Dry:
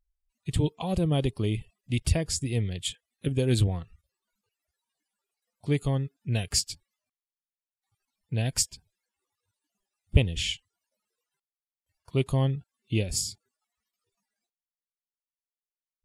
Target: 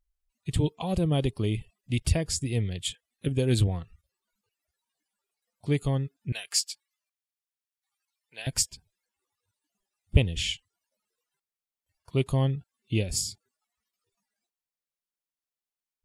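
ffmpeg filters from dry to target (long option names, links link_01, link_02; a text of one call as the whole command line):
ffmpeg -i in.wav -filter_complex "[0:a]asettb=1/sr,asplit=3[link_01][link_02][link_03];[link_01]atrim=end=6.324[link_04];[link_02]atrim=start=6.32:end=8.47,asetpts=PTS-STARTPTS,afade=type=in:duration=0.004:curve=qsin,afade=type=out:start_time=2.146:duration=0.004:curve=qsin,highpass=1100[link_05];[link_03]atrim=start=8.466[link_06];[link_04][link_05]acrossfade=duration=0.004:curve1=hsin:curve2=qsin[link_07];[link_07][link_06]acrossfade=duration=0.004:curve1=qsin:curve2=hsin" out.wav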